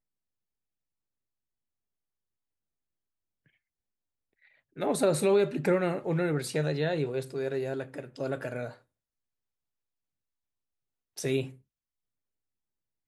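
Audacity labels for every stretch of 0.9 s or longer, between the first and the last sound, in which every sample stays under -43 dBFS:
8.740000	11.170000	silence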